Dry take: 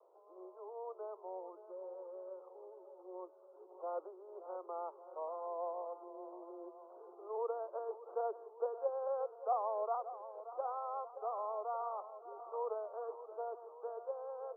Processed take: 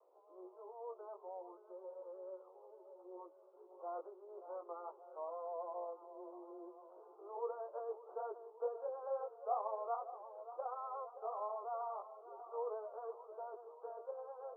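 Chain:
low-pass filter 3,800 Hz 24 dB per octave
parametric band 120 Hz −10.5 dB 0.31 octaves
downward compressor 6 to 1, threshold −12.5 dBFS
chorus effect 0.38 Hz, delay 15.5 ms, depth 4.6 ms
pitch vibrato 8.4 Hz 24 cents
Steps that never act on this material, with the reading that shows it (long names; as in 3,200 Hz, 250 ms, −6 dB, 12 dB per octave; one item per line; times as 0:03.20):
low-pass filter 3,800 Hz: nothing at its input above 1,400 Hz
parametric band 120 Hz: nothing at its input below 320 Hz
downward compressor, threshold −12.5 dBFS: peak of its input −25.0 dBFS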